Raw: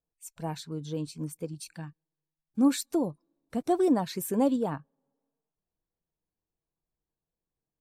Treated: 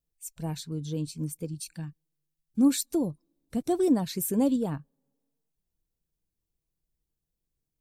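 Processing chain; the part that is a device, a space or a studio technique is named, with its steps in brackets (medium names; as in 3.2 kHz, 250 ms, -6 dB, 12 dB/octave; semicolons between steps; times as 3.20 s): smiley-face EQ (bass shelf 91 Hz +8 dB; peaking EQ 1 kHz -8.5 dB 2.3 oct; treble shelf 7.5 kHz +4 dB); trim +2.5 dB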